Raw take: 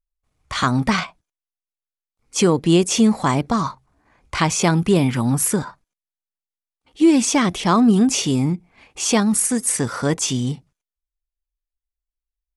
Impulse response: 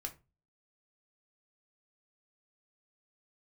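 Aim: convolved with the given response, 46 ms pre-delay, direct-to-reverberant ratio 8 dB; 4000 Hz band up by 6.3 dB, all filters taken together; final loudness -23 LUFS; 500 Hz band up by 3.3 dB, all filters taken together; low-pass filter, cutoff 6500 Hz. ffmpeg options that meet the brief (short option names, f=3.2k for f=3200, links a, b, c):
-filter_complex "[0:a]lowpass=6.5k,equalizer=f=500:t=o:g=4.5,equalizer=f=4k:t=o:g=9,asplit=2[a][b];[1:a]atrim=start_sample=2205,adelay=46[c];[b][c]afir=irnorm=-1:irlink=0,volume=-6dB[d];[a][d]amix=inputs=2:normalize=0,volume=-6.5dB"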